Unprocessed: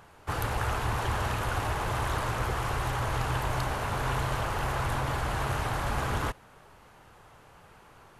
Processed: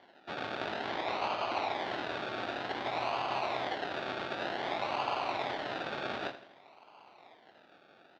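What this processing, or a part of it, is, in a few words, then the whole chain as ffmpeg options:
circuit-bent sampling toy: -filter_complex "[0:a]acrusher=samples=34:mix=1:aa=0.000001:lfo=1:lforange=20.4:lforate=0.54,highpass=440,equalizer=frequency=480:width_type=q:width=4:gain=-7,equalizer=frequency=720:width_type=q:width=4:gain=4,equalizer=frequency=1400:width_type=q:width=4:gain=3,equalizer=frequency=3700:width_type=q:width=4:gain=4,lowpass=frequency=4100:width=0.5412,lowpass=frequency=4100:width=1.3066,asettb=1/sr,asplit=3[link_01][link_02][link_03];[link_01]atrim=end=0.894[link_04];[link_02]atrim=start=0.89:end=1.73,asetpts=PTS-STARTPTS,afade=type=in:duration=0.004:curve=qsin,afade=type=out:start_time=0.836:duration=0.004:curve=qsin,lowpass=frequency=7700:width=0.5412,lowpass=frequency=7700:width=1.3066[link_05];[link_03]atrim=start=1.726[link_06];[link_04][link_05]acrossfade=duration=0.004:curve1=hsin:curve2=qsin[link_07];[link_07][link_06]acrossfade=duration=0.004:curve1=qsin:curve2=hsin,aecho=1:1:81|162|243|324|405:0.224|0.103|0.0474|0.0218|0.01"

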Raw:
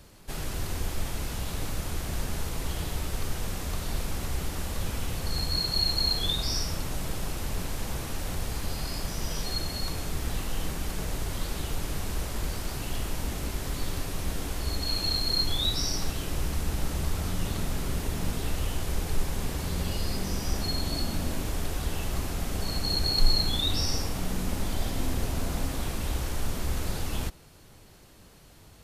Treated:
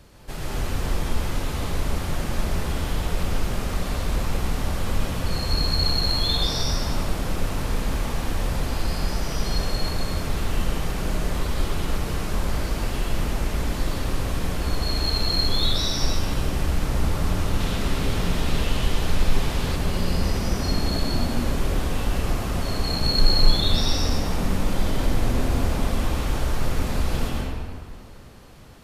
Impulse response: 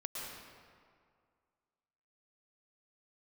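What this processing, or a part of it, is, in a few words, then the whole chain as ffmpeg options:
swimming-pool hall: -filter_complex "[1:a]atrim=start_sample=2205[link_01];[0:a][link_01]afir=irnorm=-1:irlink=0,highshelf=frequency=5100:gain=-6.5,asettb=1/sr,asplit=3[link_02][link_03][link_04];[link_02]atrim=end=17.604[link_05];[link_03]atrim=start=17.6:end=19.76,asetpts=PTS-STARTPTS,afade=type=in:duration=0.004:curve=qsin,afade=type=out:start_time=2.156:duration=0.004:curve=qsin,equalizer=frequency=3500:width_type=o:width=1.4:gain=5.5[link_06];[link_04]atrim=start=19.756[link_07];[link_05][link_06]acrossfade=duration=0.004:curve1=hsin:curve2=qsin[link_08];[link_08][link_07]acrossfade=duration=0.004:curve1=qsin:curve2=hsin,volume=6.5dB"

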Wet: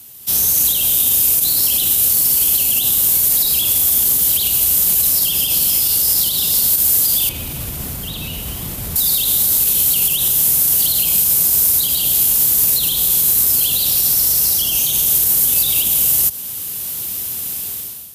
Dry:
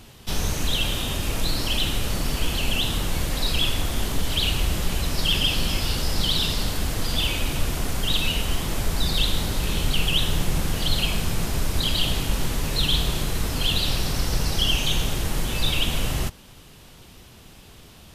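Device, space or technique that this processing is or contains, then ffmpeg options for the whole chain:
FM broadcast chain: -filter_complex "[0:a]highpass=71,dynaudnorm=framelen=130:gausssize=7:maxgain=15.5dB,acrossover=split=410|1200|2600[link_01][link_02][link_03][link_04];[link_01]acompressor=threshold=-21dB:ratio=4[link_05];[link_02]acompressor=threshold=-28dB:ratio=4[link_06];[link_03]acompressor=threshold=-38dB:ratio=4[link_07];[link_04]acompressor=threshold=-17dB:ratio=4[link_08];[link_05][link_06][link_07][link_08]amix=inputs=4:normalize=0,aemphasis=mode=production:type=50fm,alimiter=limit=-9dB:level=0:latency=1:release=79,asoftclip=type=hard:threshold=-10dB,lowpass=frequency=15000:width=0.5412,lowpass=frequency=15000:width=1.3066,aemphasis=mode=production:type=50fm,asettb=1/sr,asplit=3[link_09][link_10][link_11];[link_09]atrim=end=7.294[link_12];[link_10]atrim=start=7.29:end=8.96,asetpts=PTS-STARTPTS,afade=type=in:duration=0.004:curve=qsin,afade=type=out:start_time=1.666:duration=0.004:curve=qsin,bass=frequency=250:gain=8,treble=frequency=4000:gain=-15[link_13];[link_11]atrim=start=8.956[link_14];[link_12][link_13]acrossfade=duration=0.004:curve1=hsin:curve2=qsin[link_15];[link_15][link_14]acrossfade=duration=0.004:curve1=qsin:curve2=hsin,volume=-7dB"

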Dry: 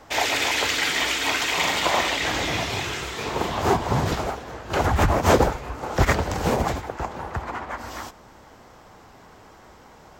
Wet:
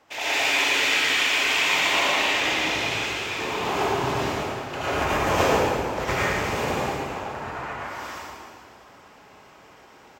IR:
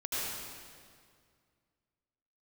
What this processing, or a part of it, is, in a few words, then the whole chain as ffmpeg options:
PA in a hall: -filter_complex "[0:a]highpass=frequency=200:poles=1,equalizer=frequency=2600:width_type=o:width=0.61:gain=6,aecho=1:1:114:0.447[link_01];[1:a]atrim=start_sample=2205[link_02];[link_01][link_02]afir=irnorm=-1:irlink=0,volume=-7.5dB"

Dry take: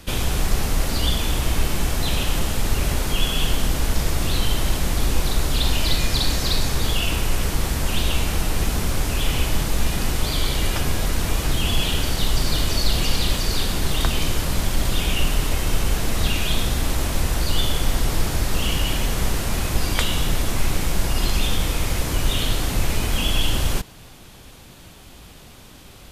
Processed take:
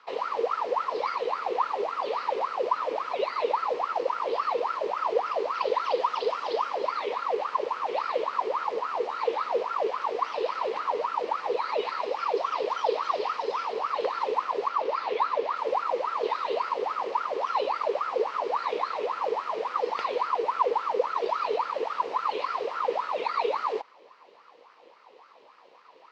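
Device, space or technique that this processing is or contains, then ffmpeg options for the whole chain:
voice changer toy: -filter_complex "[0:a]asettb=1/sr,asplit=3[link_01][link_02][link_03];[link_01]atrim=end=14.694[link_04];[link_02]atrim=start=14.69:end=15.56,asetpts=PTS-STARTPTS,afade=type=in:duration=0.004:curve=qsin,afade=type=out:start_time=0.866:duration=0.004:curve=qsin,lowpass=6000[link_05];[link_03]atrim=start=15.556[link_06];[link_04][link_05]acrossfade=duration=0.004:curve1=hsin:curve2=qsin[link_07];[link_07][link_06]acrossfade=duration=0.004:curve1=qsin:curve2=hsin,aeval=exprs='val(0)*sin(2*PI*890*n/s+890*0.55/3.6*sin(2*PI*3.6*n/s))':channel_layout=same,highpass=400,equalizer=frequency=480:width_type=q:width=4:gain=7,equalizer=frequency=700:width_type=q:width=4:gain=-3,equalizer=frequency=1000:width_type=q:width=4:gain=6,equalizer=frequency=1500:width_type=q:width=4:gain=-7,equalizer=frequency=3500:width_type=q:width=4:gain=-6,lowpass=frequency=4100:width=0.5412,lowpass=frequency=4100:width=1.3066,volume=-8dB"

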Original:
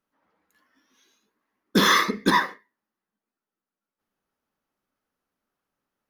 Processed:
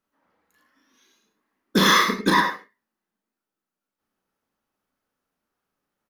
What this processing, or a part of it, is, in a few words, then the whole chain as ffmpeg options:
slapback doubling: -filter_complex "[0:a]asplit=3[link_01][link_02][link_03];[link_02]adelay=36,volume=-4dB[link_04];[link_03]adelay=103,volume=-7.5dB[link_05];[link_01][link_04][link_05]amix=inputs=3:normalize=0"

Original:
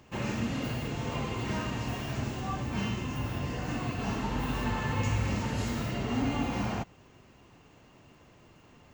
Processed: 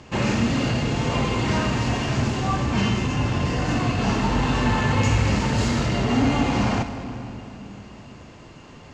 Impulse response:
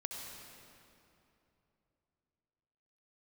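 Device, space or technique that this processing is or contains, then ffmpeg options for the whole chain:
saturated reverb return: -filter_complex "[0:a]lowpass=frequency=9100:width=0.5412,lowpass=frequency=9100:width=1.3066,equalizer=frequency=4600:width_type=o:width=0.27:gain=3.5,asplit=2[link_01][link_02];[1:a]atrim=start_sample=2205[link_03];[link_02][link_03]afir=irnorm=-1:irlink=0,asoftclip=type=tanh:threshold=-32.5dB,volume=-1dB[link_04];[link_01][link_04]amix=inputs=2:normalize=0,volume=7.5dB"

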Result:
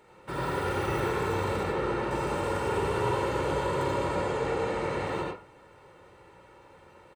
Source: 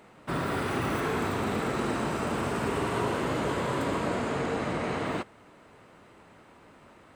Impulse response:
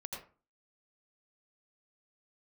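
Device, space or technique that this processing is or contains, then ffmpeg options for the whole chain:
microphone above a desk: -filter_complex "[0:a]asettb=1/sr,asplit=3[link_01][link_02][link_03];[link_01]atrim=end=1.634[link_04];[link_02]atrim=start=1.63:end=2.11,asetpts=PTS-STARTPTS,afade=type=in:duration=0.004:curve=qsin,afade=type=out:start_time=0.476:duration=0.004:curve=qsin,acrossover=split=3800[link_05][link_06];[link_06]acompressor=threshold=-57dB:ratio=4:attack=1:release=60[link_07];[link_05][link_07]amix=inputs=2:normalize=0[link_08];[link_03]atrim=start=2.106[link_09];[link_04][link_08]acrossfade=duration=0.004:curve1=hsin:curve2=qsin[link_10];[link_10][link_09]acrossfade=duration=0.004:curve1=qsin:curve2=hsin,aecho=1:1:2.2:0.57[link_11];[1:a]atrim=start_sample=2205[link_12];[link_11][link_12]afir=irnorm=-1:irlink=0"

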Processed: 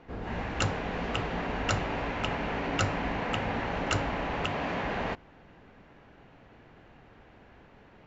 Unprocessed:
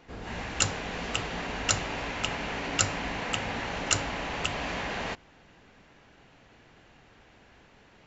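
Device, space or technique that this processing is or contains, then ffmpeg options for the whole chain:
through cloth: -filter_complex "[0:a]asettb=1/sr,asplit=3[link_01][link_02][link_03];[link_01]atrim=end=4.454[link_04];[link_02]atrim=start=4.45:end=4.85,asetpts=PTS-STARTPTS,afade=type=in:duration=0.004:curve=qsin,afade=type=out:start_time=0.396:duration=0.004:curve=qsin,highpass=86[link_05];[link_03]atrim=start=4.846[link_06];[link_04][link_05]acrossfade=duration=0.004:curve1=hsin:curve2=qsin[link_07];[link_07][link_06]acrossfade=duration=0.004:curve1=qsin:curve2=hsin,lowpass=6800,highshelf=frequency=3000:gain=-15.5,volume=3.5dB"

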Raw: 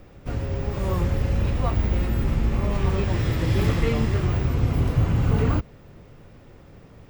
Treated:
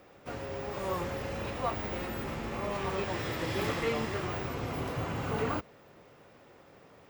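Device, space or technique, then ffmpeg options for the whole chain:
filter by subtraction: -filter_complex "[0:a]asplit=2[link_01][link_02];[link_02]lowpass=730,volume=-1[link_03];[link_01][link_03]amix=inputs=2:normalize=0,volume=-3.5dB"

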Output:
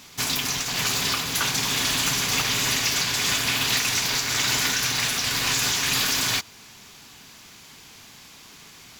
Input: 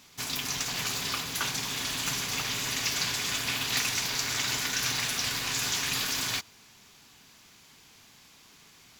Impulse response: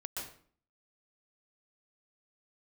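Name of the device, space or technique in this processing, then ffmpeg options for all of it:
limiter into clipper: -af "alimiter=limit=-20dB:level=0:latency=1:release=306,asoftclip=type=hard:threshold=-25.5dB,volume=9dB"

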